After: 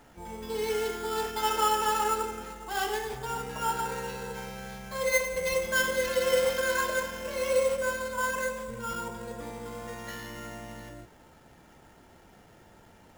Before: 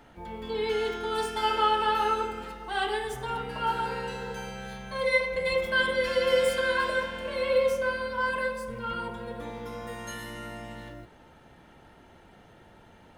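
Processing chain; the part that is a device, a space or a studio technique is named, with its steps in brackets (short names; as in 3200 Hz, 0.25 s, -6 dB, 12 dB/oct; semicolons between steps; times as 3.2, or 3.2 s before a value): early companding sampler (sample-rate reducer 8400 Hz, jitter 0%; companded quantiser 6-bit); gain -1.5 dB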